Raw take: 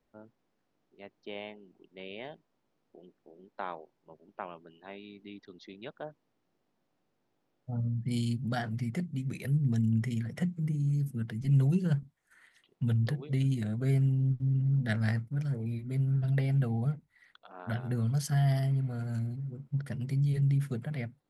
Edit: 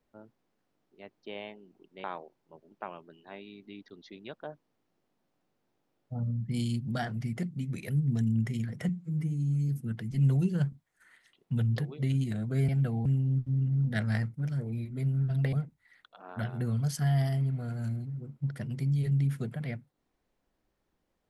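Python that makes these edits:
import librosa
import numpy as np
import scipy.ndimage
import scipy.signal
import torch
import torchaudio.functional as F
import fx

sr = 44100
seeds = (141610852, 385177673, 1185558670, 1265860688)

y = fx.edit(x, sr, fx.cut(start_s=2.04, length_s=1.57),
    fx.stretch_span(start_s=10.46, length_s=0.53, factor=1.5),
    fx.move(start_s=16.46, length_s=0.37, to_s=13.99), tone=tone)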